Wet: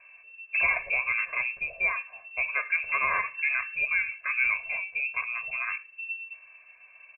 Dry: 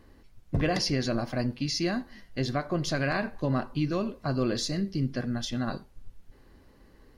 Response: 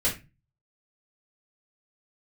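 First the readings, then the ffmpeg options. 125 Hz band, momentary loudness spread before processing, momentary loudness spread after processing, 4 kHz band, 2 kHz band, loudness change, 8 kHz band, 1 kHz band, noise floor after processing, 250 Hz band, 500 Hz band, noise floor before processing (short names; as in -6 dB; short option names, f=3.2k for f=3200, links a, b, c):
under -25 dB, 6 LU, 10 LU, under -35 dB, +12.5 dB, +2.5 dB, under -40 dB, +1.5 dB, -55 dBFS, under -30 dB, -13.5 dB, -57 dBFS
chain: -af "lowpass=f=2.3k:t=q:w=0.5098,lowpass=f=2.3k:t=q:w=0.6013,lowpass=f=2.3k:t=q:w=0.9,lowpass=f=2.3k:t=q:w=2.563,afreqshift=-2700,aecho=1:1:1.8:0.82"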